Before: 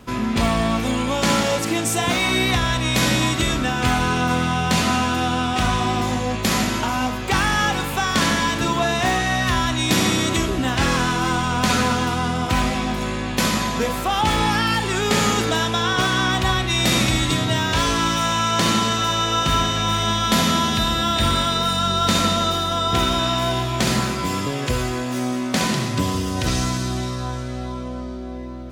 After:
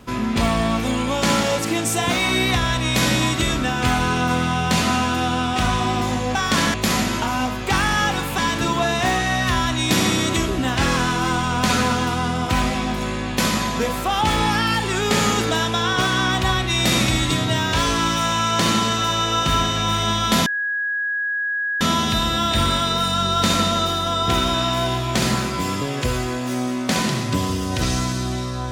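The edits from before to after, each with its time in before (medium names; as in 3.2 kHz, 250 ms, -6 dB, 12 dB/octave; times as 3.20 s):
7.99–8.38 s: move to 6.35 s
20.46 s: add tone 1.66 kHz -20.5 dBFS 1.35 s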